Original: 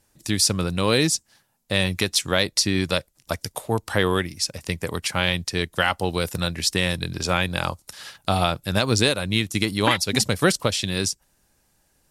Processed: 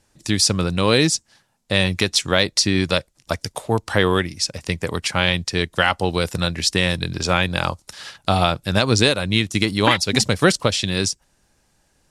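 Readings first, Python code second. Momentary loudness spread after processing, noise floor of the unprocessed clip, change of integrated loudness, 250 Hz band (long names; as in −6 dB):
8 LU, −66 dBFS, +3.0 dB, +3.5 dB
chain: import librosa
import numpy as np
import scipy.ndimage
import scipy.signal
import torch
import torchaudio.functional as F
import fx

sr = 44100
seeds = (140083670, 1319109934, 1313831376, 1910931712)

y = scipy.signal.sosfilt(scipy.signal.butter(2, 8300.0, 'lowpass', fs=sr, output='sos'), x)
y = y * 10.0 ** (3.5 / 20.0)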